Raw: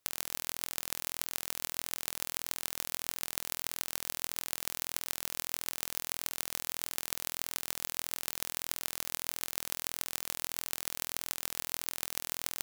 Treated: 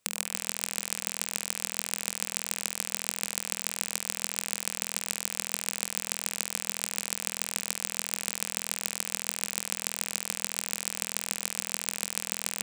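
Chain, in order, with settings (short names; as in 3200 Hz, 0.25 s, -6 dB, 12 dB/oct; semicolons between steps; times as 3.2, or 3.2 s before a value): thirty-one-band EQ 200 Hz +11 dB, 315 Hz -5 dB, 500 Hz +4 dB, 2500 Hz +5 dB, 8000 Hz +9 dB, 16000 Hz -10 dB; delay with a stepping band-pass 0.101 s, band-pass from 770 Hz, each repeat 1.4 oct, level -11.5 dB; gain +3.5 dB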